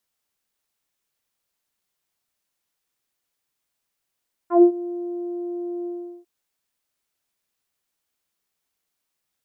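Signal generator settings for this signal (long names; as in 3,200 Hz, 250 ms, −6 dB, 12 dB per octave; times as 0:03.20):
subtractive voice saw F4 24 dB per octave, low-pass 490 Hz, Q 2.4, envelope 1.5 octaves, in 0.10 s, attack 122 ms, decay 0.09 s, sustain −19.5 dB, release 0.39 s, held 1.36 s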